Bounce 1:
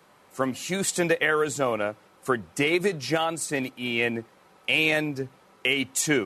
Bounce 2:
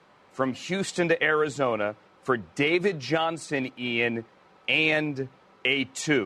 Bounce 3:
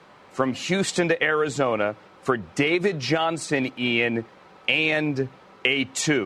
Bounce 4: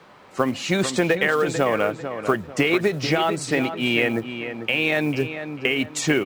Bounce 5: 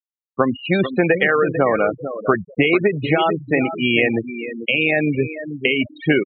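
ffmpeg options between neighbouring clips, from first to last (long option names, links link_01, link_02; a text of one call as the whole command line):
ffmpeg -i in.wav -af "lowpass=4700" out.wav
ffmpeg -i in.wav -af "acompressor=threshold=-25dB:ratio=4,volume=7dB" out.wav
ffmpeg -i in.wav -filter_complex "[0:a]acrossover=split=2400[link_01][link_02];[link_02]alimiter=limit=-18.5dB:level=0:latency=1:release=350[link_03];[link_01][link_03]amix=inputs=2:normalize=0,acrusher=bits=7:mode=log:mix=0:aa=0.000001,asplit=2[link_04][link_05];[link_05]adelay=445,lowpass=frequency=2700:poles=1,volume=-9dB,asplit=2[link_06][link_07];[link_07]adelay=445,lowpass=frequency=2700:poles=1,volume=0.34,asplit=2[link_08][link_09];[link_09]adelay=445,lowpass=frequency=2700:poles=1,volume=0.34,asplit=2[link_10][link_11];[link_11]adelay=445,lowpass=frequency=2700:poles=1,volume=0.34[link_12];[link_04][link_06][link_08][link_10][link_12]amix=inputs=5:normalize=0,volume=1.5dB" out.wav
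ffmpeg -i in.wav -af "acrusher=bits=4:mode=log:mix=0:aa=0.000001,afftfilt=real='re*gte(hypot(re,im),0.1)':imag='im*gte(hypot(re,im),0.1)':win_size=1024:overlap=0.75,aresample=8000,aresample=44100,volume=4dB" out.wav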